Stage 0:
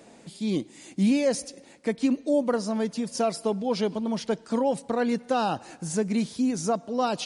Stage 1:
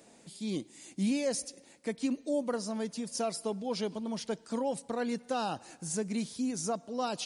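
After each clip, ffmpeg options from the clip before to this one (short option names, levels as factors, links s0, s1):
-af "highshelf=f=5000:g=9,volume=0.398"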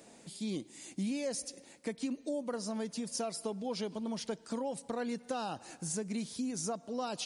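-af "acompressor=threshold=0.0158:ratio=3,volume=1.19"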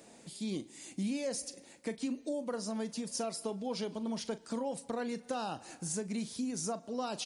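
-filter_complex "[0:a]asplit=2[s0][s1];[s1]adelay=40,volume=0.2[s2];[s0][s2]amix=inputs=2:normalize=0"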